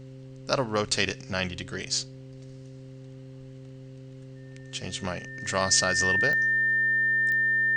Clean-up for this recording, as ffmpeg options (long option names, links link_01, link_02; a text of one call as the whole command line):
ffmpeg -i in.wav -af "adeclick=threshold=4,bandreject=frequency=131.8:width_type=h:width=4,bandreject=frequency=263.6:width_type=h:width=4,bandreject=frequency=395.4:width_type=h:width=4,bandreject=frequency=527.2:width_type=h:width=4,bandreject=frequency=1800:width=30" out.wav